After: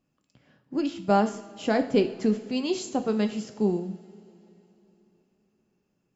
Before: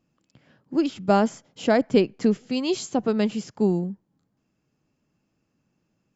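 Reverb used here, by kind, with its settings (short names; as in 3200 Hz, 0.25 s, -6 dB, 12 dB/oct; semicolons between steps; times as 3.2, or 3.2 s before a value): two-slope reverb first 0.55 s, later 3.6 s, from -18 dB, DRR 6.5 dB; gain -4 dB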